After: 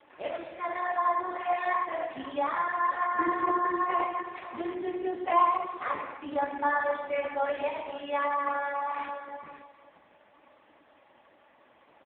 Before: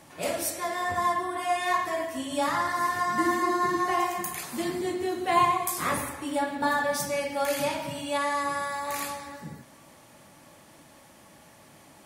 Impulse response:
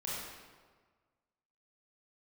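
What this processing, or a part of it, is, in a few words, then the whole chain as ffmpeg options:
satellite phone: -filter_complex "[0:a]asettb=1/sr,asplit=3[link_01][link_02][link_03];[link_01]atrim=end=8.424[link_04];[link_02]atrim=start=8.42:end=9.09,asetpts=PTS-STARTPTS,afade=type=in:duration=0.004:curve=qsin,afade=type=out:start_time=0.666:duration=0.004:curve=qsin,asplit=2[link_05][link_06];[link_06]adelay=34,volume=-3dB[link_07];[link_05][link_07]amix=inputs=2:normalize=0,atrim=end_sample=29547[link_08];[link_03]atrim=start=9.086[link_09];[link_04][link_08]acrossfade=duration=0.004:curve1=hsin:curve2=qsin[link_10];[link_10][link_09]acrossfade=duration=0.004:curve1=qsin:curve2=hsin,highpass=340,lowpass=3200,aecho=1:1:526:0.2" -ar 8000 -c:a libopencore_amrnb -b:a 4750

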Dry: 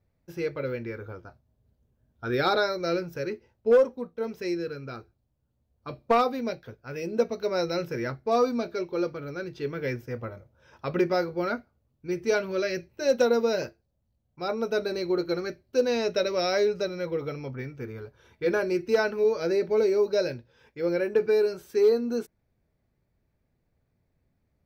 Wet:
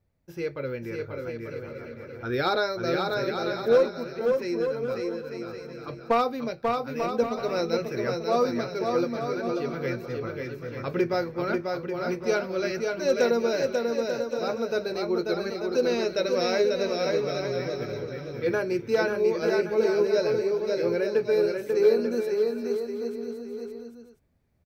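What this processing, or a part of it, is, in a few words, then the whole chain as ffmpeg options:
ducked delay: -filter_complex "[0:a]aecho=1:1:540|891|1119|1267|1364:0.631|0.398|0.251|0.158|0.1,asplit=3[link_01][link_02][link_03];[link_02]adelay=566,volume=-4dB[link_04];[link_03]apad=whole_len=1172247[link_05];[link_04][link_05]sidechaincompress=threshold=-37dB:ratio=8:attack=5.1:release=465[link_06];[link_01][link_06]amix=inputs=2:normalize=0,volume=-1dB"

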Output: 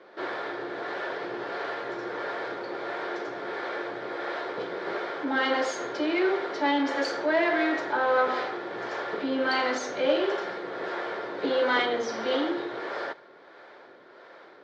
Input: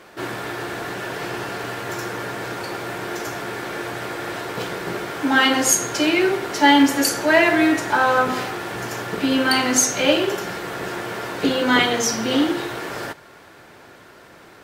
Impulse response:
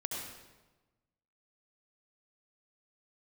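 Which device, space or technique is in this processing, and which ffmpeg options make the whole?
guitar amplifier with harmonic tremolo: -filter_complex "[0:a]acrossover=split=430[link_01][link_02];[link_01]aeval=exprs='val(0)*(1-0.5/2+0.5/2*cos(2*PI*1.5*n/s))':channel_layout=same[link_03];[link_02]aeval=exprs='val(0)*(1-0.5/2-0.5/2*cos(2*PI*1.5*n/s))':channel_layout=same[link_04];[link_03][link_04]amix=inputs=2:normalize=0,asoftclip=type=tanh:threshold=-15.5dB,highpass=350,highpass=77,equalizer=frequency=120:width_type=q:width=4:gain=4,equalizer=frequency=380:width_type=q:width=4:gain=3,equalizer=frequency=540:width_type=q:width=4:gain=5,equalizer=frequency=2700:width_type=q:width=4:gain=-9,lowpass=frequency=4100:width=0.5412,lowpass=frequency=4100:width=1.3066,volume=-2dB"

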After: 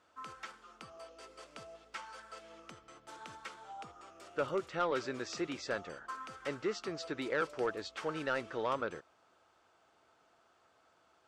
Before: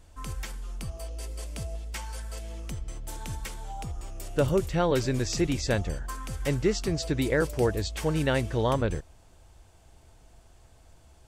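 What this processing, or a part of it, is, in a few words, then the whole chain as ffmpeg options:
intercom: -af "highpass=330,lowpass=4700,equalizer=frequency=1300:width_type=o:width=0.41:gain=12,asoftclip=type=tanh:threshold=-16.5dB,volume=-7dB"

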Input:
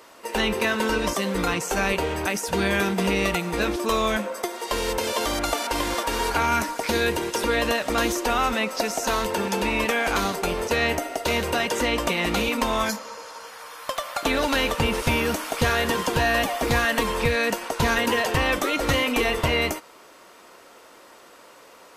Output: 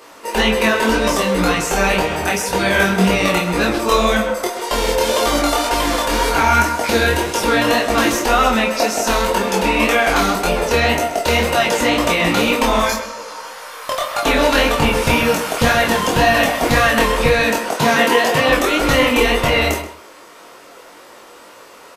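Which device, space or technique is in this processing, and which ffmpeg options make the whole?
double-tracked vocal: -filter_complex "[0:a]asettb=1/sr,asplit=3[link_01][link_02][link_03];[link_01]atrim=end=17.624[link_04];[link_02]atrim=start=17.62:end=18.49,asetpts=PTS-STARTPTS,afade=type=in:duration=0.004:curve=qsin,afade=type=out:start_time=0.866:duration=0.004:curve=qsin,highpass=frequency=120:width=0.5412,highpass=frequency=120:width=1.3066[link_05];[link_03]atrim=start=18.486[link_06];[link_04][link_05]acrossfade=duration=0.004:curve1=hsin:curve2=qsin[link_07];[link_07][link_06]acrossfade=duration=0.004:curve1=qsin:curve2=hsin,asplit=2[link_08][link_09];[link_09]adelay=17,volume=-11.5dB[link_10];[link_08][link_10]amix=inputs=2:normalize=0,asplit=2[link_11][link_12];[link_12]adelay=27,volume=-5.5dB[link_13];[link_11][link_13]amix=inputs=2:normalize=0,flanger=delay=18.5:depth=6.5:speed=1.9,asplit=2[link_14][link_15];[link_15]adelay=130,lowpass=frequency=3800:poles=1,volume=-10dB,asplit=2[link_16][link_17];[link_17]adelay=130,lowpass=frequency=3800:poles=1,volume=0.17[link_18];[link_14][link_16][link_18]amix=inputs=3:normalize=0,volume=9dB"

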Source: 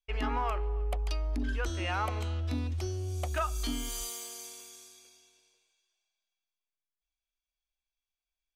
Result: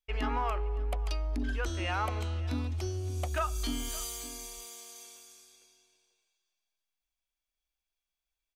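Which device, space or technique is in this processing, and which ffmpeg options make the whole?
ducked delay: -filter_complex "[0:a]asplit=3[link_01][link_02][link_03];[link_02]adelay=566,volume=-4dB[link_04];[link_03]apad=whole_len=402031[link_05];[link_04][link_05]sidechaincompress=threshold=-47dB:ratio=5:attack=16:release=936[link_06];[link_01][link_06]amix=inputs=2:normalize=0"

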